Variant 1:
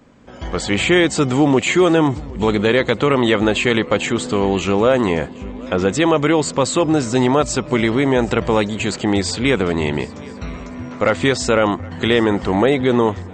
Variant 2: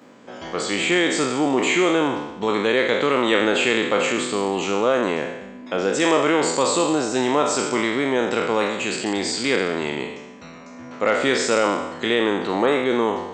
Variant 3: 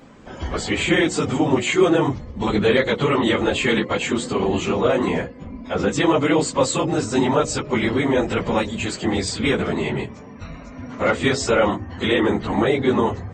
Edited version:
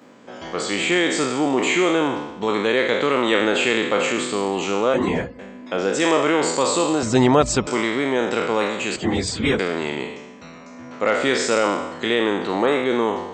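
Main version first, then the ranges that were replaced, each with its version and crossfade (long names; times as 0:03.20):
2
0:04.94–0:05.39: punch in from 3
0:07.03–0:07.67: punch in from 1
0:08.96–0:09.59: punch in from 3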